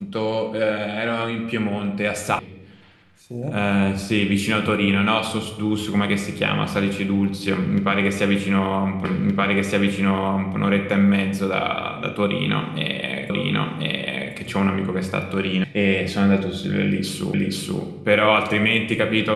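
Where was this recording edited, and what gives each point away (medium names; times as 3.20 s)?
2.39 s: sound stops dead
9.05 s: repeat of the last 1.52 s
13.30 s: repeat of the last 1.04 s
15.64 s: sound stops dead
17.34 s: repeat of the last 0.48 s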